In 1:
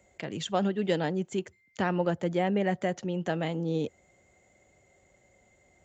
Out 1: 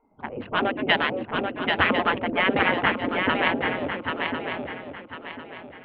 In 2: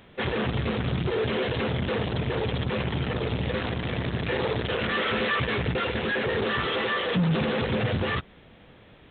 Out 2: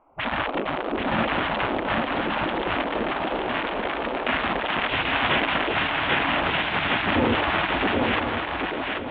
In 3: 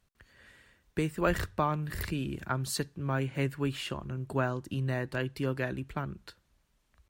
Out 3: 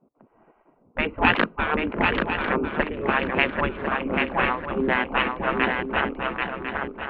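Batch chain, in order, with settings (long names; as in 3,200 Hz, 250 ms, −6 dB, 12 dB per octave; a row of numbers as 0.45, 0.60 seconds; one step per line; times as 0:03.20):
adaptive Wiener filter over 25 samples
gate on every frequency bin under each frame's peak −15 dB weak
Butterworth low-pass 3,200 Hz 36 dB per octave
low-pass that shuts in the quiet parts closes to 780 Hz, open at −34.5 dBFS
parametric band 240 Hz +5.5 dB 0.82 octaves
feedback echo with a long and a short gap by turns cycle 1,049 ms, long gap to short 3 to 1, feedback 32%, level −4 dB
loudness normalisation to −24 LKFS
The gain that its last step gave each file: +19.0, +12.0, +21.0 decibels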